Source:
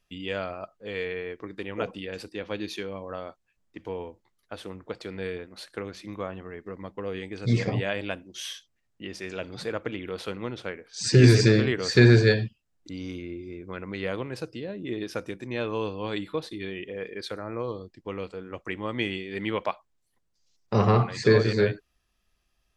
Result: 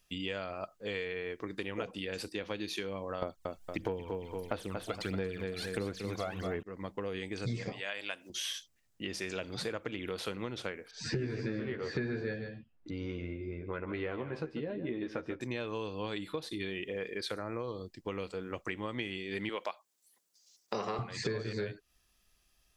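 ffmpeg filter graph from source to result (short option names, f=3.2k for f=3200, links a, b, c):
-filter_complex "[0:a]asettb=1/sr,asplit=3[a][b][c];[a]atrim=end=3.224[d];[b]atrim=start=3.22:end=6.63,asetpts=PTS-STARTPTS,afade=t=in:d=0.004:c=qsin,afade=t=out:st=3.406:d=0.004:c=qsin,aphaser=in_gain=1:out_gain=1:delay=1.5:decay=0.72:speed=1.5:type=sinusoidal,aecho=1:1:231|462|693:0.398|0.115|0.0335,atrim=end_sample=150381,acontrast=67[e];[c]atrim=start=6.626[f];[d][e]acrossfade=d=0.004:c1=hsin:c2=qsin[g];[g][f]acrossfade=d=0.004:c1=qsin:c2=hsin,asettb=1/sr,asplit=3[h][i][j];[h]atrim=end=7.724[k];[i]atrim=start=7.72:end=8.3,asetpts=PTS-STARTPTS,afade=t=in:d=0.004:c=qsin,afade=t=out:st=0.576:d=0.004:c=qsin,highpass=f=1.3k:p=1,acompressor=mode=upward:threshold=-40dB:ratio=2.5:attack=3.2:release=140:knee=2.83:detection=peak[l];[j]atrim=start=8.296[m];[k][l]acrossfade=d=0.004:c1=hsin:c2=qsin[n];[n][m]acrossfade=d=0.004:c1=qsin:c2=hsin,asettb=1/sr,asplit=3[o][p][q];[o]atrim=end=10.914[r];[p]atrim=start=10.91:end=15.41,asetpts=PTS-STARTPTS,afade=t=in:d=0.004:c=qsin,afade=t=out:st=4.496:d=0.004:c=qsin,lowpass=1.9k,asplit=2[s][t];[t]adelay=13,volume=-5dB[u];[s][u]amix=inputs=2:normalize=0,atrim=end_sample=198450,aecho=1:1:146:0.237,atrim=end_sample=198450[v];[q]atrim=start=15.406[w];[r][v]acrossfade=d=0.004:c1=hsin:c2=qsin[x];[x][w]acrossfade=d=0.004:c1=qsin:c2=hsin,asettb=1/sr,asplit=3[y][z][aa];[y]atrim=end=19.494[ab];[z]atrim=start=19.49:end=20.99,asetpts=PTS-STARTPTS,afade=t=in:d=0.004:c=qsin,afade=t=out:st=1.496:d=0.004:c=qsin,highpass=190,bass=f=250:g=-8,treble=f=4k:g=5[ac];[aa]atrim=start=20.986[ad];[ab][ac]acrossfade=d=0.004:c1=hsin:c2=qsin[ae];[ae][ad]acrossfade=d=0.004:c1=qsin:c2=hsin,acrossover=split=3500[af][ag];[ag]acompressor=threshold=-43dB:ratio=4:attack=1:release=60[ah];[af][ah]amix=inputs=2:normalize=0,highshelf=f=4.3k:g=10,acompressor=threshold=-33dB:ratio=8"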